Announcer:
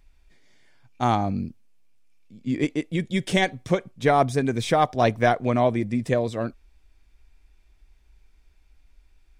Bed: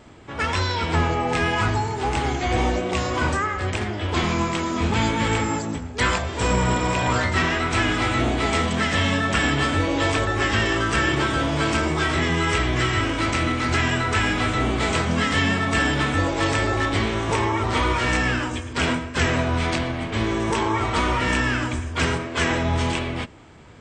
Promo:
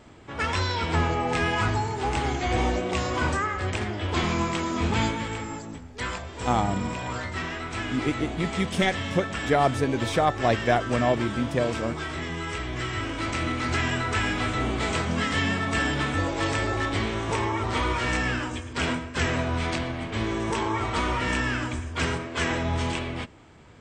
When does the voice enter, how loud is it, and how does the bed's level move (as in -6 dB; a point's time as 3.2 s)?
5.45 s, -2.5 dB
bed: 5.04 s -3 dB
5.28 s -10.5 dB
12.57 s -10.5 dB
13.58 s -4.5 dB